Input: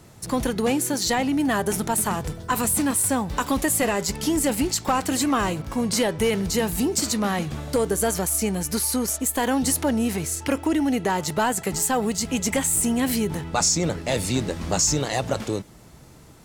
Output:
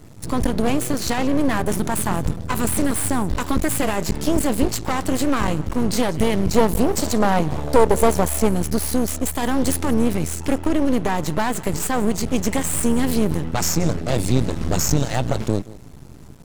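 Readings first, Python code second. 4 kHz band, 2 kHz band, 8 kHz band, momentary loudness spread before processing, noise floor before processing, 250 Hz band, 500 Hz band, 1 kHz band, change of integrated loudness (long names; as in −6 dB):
−1.5 dB, 0.0 dB, −3.0 dB, 5 LU, −48 dBFS, +3.0 dB, +3.5 dB, +2.0 dB, +2.0 dB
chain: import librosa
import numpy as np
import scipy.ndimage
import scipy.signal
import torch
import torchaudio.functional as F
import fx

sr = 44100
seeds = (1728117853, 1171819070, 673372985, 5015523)

y = fx.low_shelf(x, sr, hz=280.0, db=11.5)
y = y + 10.0 ** (-19.5 / 20.0) * np.pad(y, (int(177 * sr / 1000.0), 0))[:len(y)]
y = fx.spec_box(y, sr, start_s=6.53, length_s=1.95, low_hz=400.0, high_hz=1100.0, gain_db=8)
y = np.maximum(y, 0.0)
y = y * 10.0 ** (2.0 / 20.0)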